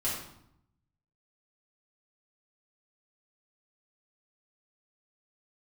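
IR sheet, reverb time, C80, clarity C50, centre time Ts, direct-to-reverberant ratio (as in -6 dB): 0.75 s, 6.0 dB, 2.5 dB, 49 ms, -8.0 dB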